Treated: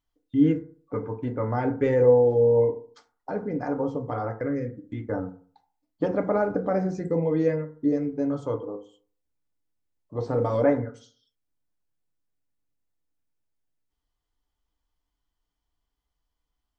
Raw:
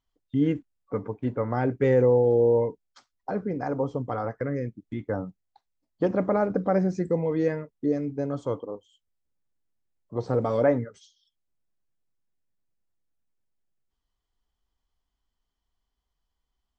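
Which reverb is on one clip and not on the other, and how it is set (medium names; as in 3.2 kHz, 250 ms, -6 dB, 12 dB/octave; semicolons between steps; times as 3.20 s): FDN reverb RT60 0.46 s, low-frequency decay 1×, high-frequency decay 0.35×, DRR 4.5 dB; trim -1.5 dB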